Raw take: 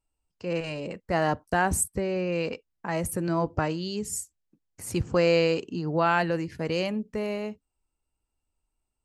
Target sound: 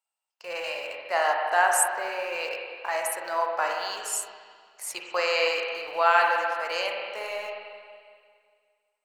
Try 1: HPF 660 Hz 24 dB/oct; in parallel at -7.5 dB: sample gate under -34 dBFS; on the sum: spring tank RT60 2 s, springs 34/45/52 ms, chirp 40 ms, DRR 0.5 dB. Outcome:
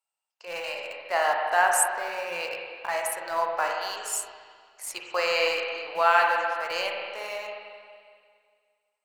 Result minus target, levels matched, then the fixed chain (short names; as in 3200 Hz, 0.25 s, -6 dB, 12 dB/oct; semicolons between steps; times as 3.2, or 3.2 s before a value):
sample gate: distortion +9 dB
HPF 660 Hz 24 dB/oct; in parallel at -7.5 dB: sample gate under -42 dBFS; on the sum: spring tank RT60 2 s, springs 34/45/52 ms, chirp 40 ms, DRR 0.5 dB